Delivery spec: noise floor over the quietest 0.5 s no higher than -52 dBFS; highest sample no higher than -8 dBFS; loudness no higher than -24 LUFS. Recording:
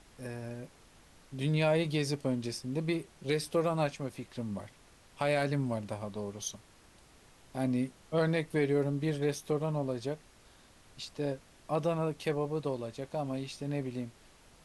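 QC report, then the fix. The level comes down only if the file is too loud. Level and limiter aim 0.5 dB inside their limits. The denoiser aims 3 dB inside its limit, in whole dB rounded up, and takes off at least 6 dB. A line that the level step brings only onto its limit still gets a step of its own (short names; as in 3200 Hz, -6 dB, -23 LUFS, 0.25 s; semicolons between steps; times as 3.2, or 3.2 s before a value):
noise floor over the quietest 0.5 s -60 dBFS: OK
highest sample -17.0 dBFS: OK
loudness -34.0 LUFS: OK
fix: none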